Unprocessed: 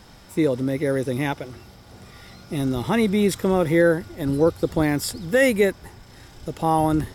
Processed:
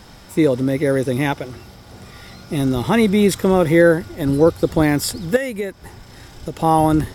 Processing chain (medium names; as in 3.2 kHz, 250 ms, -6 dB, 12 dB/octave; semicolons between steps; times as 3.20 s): 5.36–6.57 s: compression 6:1, threshold -27 dBFS, peak gain reduction 13.5 dB; trim +5 dB